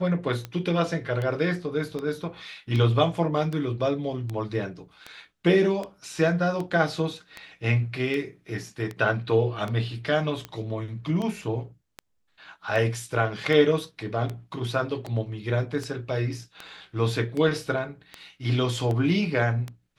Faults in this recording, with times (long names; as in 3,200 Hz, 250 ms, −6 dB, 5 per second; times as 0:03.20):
scratch tick 78 rpm −19 dBFS